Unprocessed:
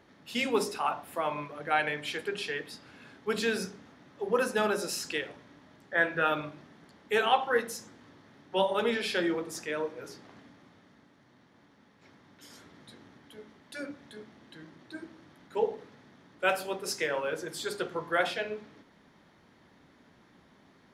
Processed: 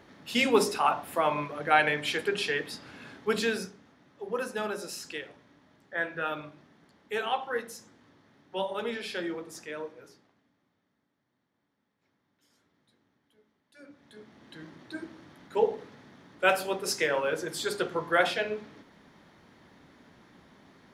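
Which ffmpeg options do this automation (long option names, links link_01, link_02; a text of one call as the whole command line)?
ffmpeg -i in.wav -af "volume=26dB,afade=type=out:start_time=3.13:duration=0.61:silence=0.316228,afade=type=out:start_time=9.82:duration=0.53:silence=0.237137,afade=type=in:start_time=13.74:duration=0.38:silence=0.237137,afade=type=in:start_time=14.12:duration=0.53:silence=0.375837" out.wav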